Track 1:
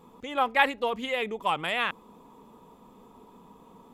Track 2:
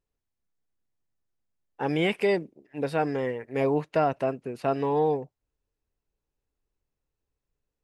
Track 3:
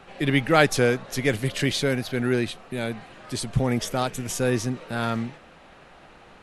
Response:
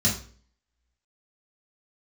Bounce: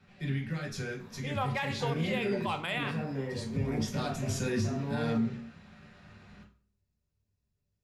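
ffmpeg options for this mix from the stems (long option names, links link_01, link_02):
-filter_complex "[0:a]bandreject=frequency=81.35:width_type=h:width=4,bandreject=frequency=162.7:width_type=h:width=4,bandreject=frequency=244.05:width_type=h:width=4,bandreject=frequency=325.4:width_type=h:width=4,bandreject=frequency=406.75:width_type=h:width=4,bandreject=frequency=488.1:width_type=h:width=4,bandreject=frequency=569.45:width_type=h:width=4,bandreject=frequency=650.8:width_type=h:width=4,bandreject=frequency=732.15:width_type=h:width=4,bandreject=frequency=813.5:width_type=h:width=4,bandreject=frequency=894.85:width_type=h:width=4,bandreject=frequency=976.2:width_type=h:width=4,bandreject=frequency=1057.55:width_type=h:width=4,bandreject=frequency=1138.9:width_type=h:width=4,bandreject=frequency=1220.25:width_type=h:width=4,bandreject=frequency=1301.6:width_type=h:width=4,bandreject=frequency=1382.95:width_type=h:width=4,bandreject=frequency=1464.3:width_type=h:width=4,bandreject=frequency=1545.65:width_type=h:width=4,bandreject=frequency=1627:width_type=h:width=4,bandreject=frequency=1708.35:width_type=h:width=4,bandreject=frequency=1789.7:width_type=h:width=4,bandreject=frequency=1871.05:width_type=h:width=4,bandreject=frequency=1952.4:width_type=h:width=4,bandreject=frequency=2033.75:width_type=h:width=4,bandreject=frequency=2115.1:width_type=h:width=4,bandreject=frequency=2196.45:width_type=h:width=4,bandreject=frequency=2277.8:width_type=h:width=4,bandreject=frequency=2359.15:width_type=h:width=4,bandreject=frequency=2440.5:width_type=h:width=4,bandreject=frequency=2521.85:width_type=h:width=4,bandreject=frequency=2603.2:width_type=h:width=4,bandreject=frequency=2684.55:width_type=h:width=4,adelay=1000,volume=-3.5dB,asplit=2[link_01][link_02];[link_02]volume=-20dB[link_03];[1:a]alimiter=limit=-23.5dB:level=0:latency=1:release=444,volume=-7.5dB,asplit=2[link_04][link_05];[link_05]volume=-7.5dB[link_06];[2:a]equalizer=frequency=630:width_type=o:width=0.67:gain=-5,equalizer=frequency=1600:width_type=o:width=0.67:gain=3,equalizer=frequency=10000:width_type=o:width=0.67:gain=-4,alimiter=limit=-12.5dB:level=0:latency=1:release=180,volume=-11dB,afade=type=in:start_time=3.51:duration=0.68:silence=0.446684,asplit=2[link_07][link_08];[link_08]volume=-8.5dB[link_09];[3:a]atrim=start_sample=2205[link_10];[link_03][link_06][link_09]amix=inputs=3:normalize=0[link_11];[link_11][link_10]afir=irnorm=-1:irlink=0[link_12];[link_01][link_04][link_07][link_12]amix=inputs=4:normalize=0,alimiter=limit=-21.5dB:level=0:latency=1:release=98"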